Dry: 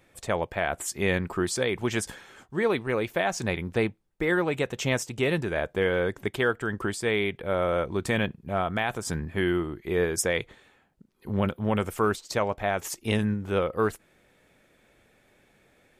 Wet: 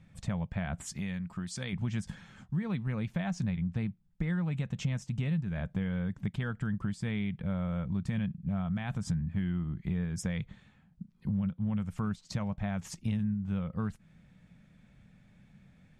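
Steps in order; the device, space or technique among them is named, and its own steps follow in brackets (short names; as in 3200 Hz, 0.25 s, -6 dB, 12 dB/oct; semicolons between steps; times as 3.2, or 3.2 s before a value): jukebox (LPF 7200 Hz 12 dB/oct; resonant low shelf 260 Hz +12.5 dB, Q 3; compressor 5:1, threshold -24 dBFS, peak gain reduction 15.5 dB); 0.95–1.73 tilt +2 dB/oct; gain -6 dB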